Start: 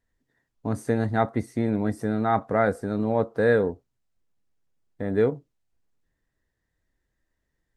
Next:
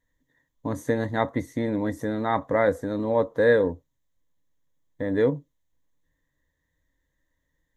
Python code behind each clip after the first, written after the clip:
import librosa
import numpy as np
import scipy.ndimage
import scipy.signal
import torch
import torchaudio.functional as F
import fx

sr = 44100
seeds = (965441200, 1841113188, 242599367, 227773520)

y = fx.ripple_eq(x, sr, per_octave=1.1, db=10)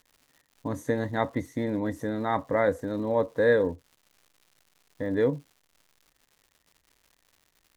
y = fx.dmg_crackle(x, sr, seeds[0], per_s=230.0, level_db=-45.0)
y = y * 10.0 ** (-2.5 / 20.0)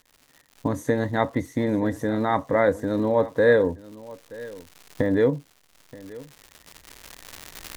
y = fx.recorder_agc(x, sr, target_db=-17.5, rise_db_per_s=9.6, max_gain_db=30)
y = y + 10.0 ** (-19.5 / 20.0) * np.pad(y, (int(927 * sr / 1000.0), 0))[:len(y)]
y = y * 10.0 ** (4.0 / 20.0)